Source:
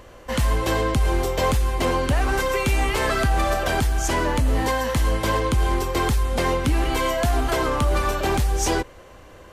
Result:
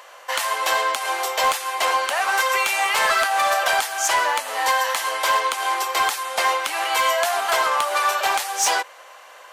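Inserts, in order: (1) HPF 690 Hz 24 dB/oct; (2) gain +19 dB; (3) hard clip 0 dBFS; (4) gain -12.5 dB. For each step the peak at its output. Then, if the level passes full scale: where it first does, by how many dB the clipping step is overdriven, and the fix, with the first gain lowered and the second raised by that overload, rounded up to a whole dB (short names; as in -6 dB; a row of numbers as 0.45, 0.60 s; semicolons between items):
-12.0, +7.0, 0.0, -12.5 dBFS; step 2, 7.0 dB; step 2 +12 dB, step 4 -5.5 dB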